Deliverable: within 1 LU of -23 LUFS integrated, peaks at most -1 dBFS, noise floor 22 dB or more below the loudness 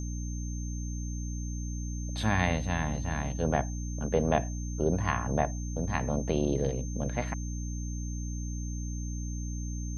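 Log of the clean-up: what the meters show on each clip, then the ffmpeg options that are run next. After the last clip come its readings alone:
hum 60 Hz; harmonics up to 300 Hz; hum level -32 dBFS; steady tone 6300 Hz; tone level -45 dBFS; loudness -32.0 LUFS; peak -10.0 dBFS; loudness target -23.0 LUFS
-> -af "bandreject=f=60:t=h:w=4,bandreject=f=120:t=h:w=4,bandreject=f=180:t=h:w=4,bandreject=f=240:t=h:w=4,bandreject=f=300:t=h:w=4"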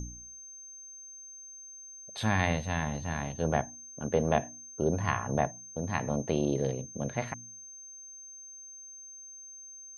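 hum none; steady tone 6300 Hz; tone level -45 dBFS
-> -af "bandreject=f=6.3k:w=30"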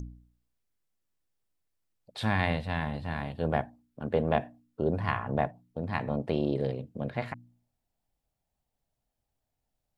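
steady tone none; loudness -31.5 LUFS; peak -10.0 dBFS; loudness target -23.0 LUFS
-> -af "volume=8.5dB"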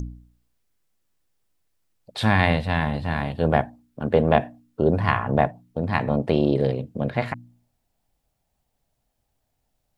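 loudness -23.0 LUFS; peak -1.5 dBFS; noise floor -75 dBFS

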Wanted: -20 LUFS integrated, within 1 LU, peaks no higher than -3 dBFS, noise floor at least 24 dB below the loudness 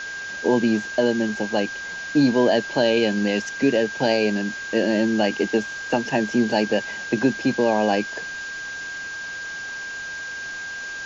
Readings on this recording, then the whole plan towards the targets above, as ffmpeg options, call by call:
steady tone 1600 Hz; tone level -30 dBFS; noise floor -33 dBFS; noise floor target -47 dBFS; loudness -23.0 LUFS; peak -7.0 dBFS; loudness target -20.0 LUFS
-> -af "bandreject=f=1.6k:w=30"
-af "afftdn=nr=14:nf=-33"
-af "volume=3dB"

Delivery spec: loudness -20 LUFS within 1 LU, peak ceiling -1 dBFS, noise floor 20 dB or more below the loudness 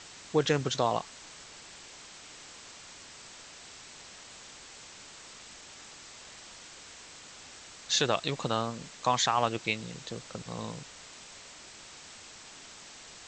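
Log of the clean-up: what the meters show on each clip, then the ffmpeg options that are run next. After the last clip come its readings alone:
noise floor -50 dBFS; noise floor target -51 dBFS; loudness -30.5 LUFS; peak -12.0 dBFS; loudness target -20.0 LUFS
-> -af "afftdn=nr=6:nf=-50"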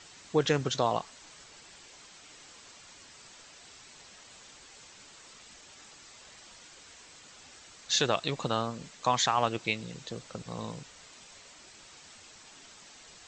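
noise floor -53 dBFS; loudness -30.5 LUFS; peak -12.0 dBFS; loudness target -20.0 LUFS
-> -af "volume=10.5dB"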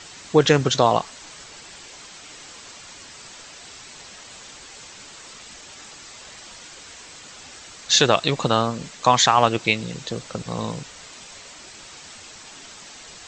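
loudness -20.0 LUFS; peak -1.5 dBFS; noise floor -43 dBFS

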